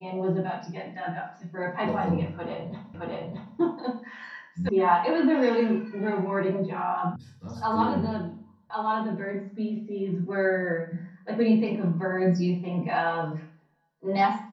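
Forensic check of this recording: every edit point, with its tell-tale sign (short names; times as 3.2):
2.94 repeat of the last 0.62 s
4.69 sound cut off
7.16 sound cut off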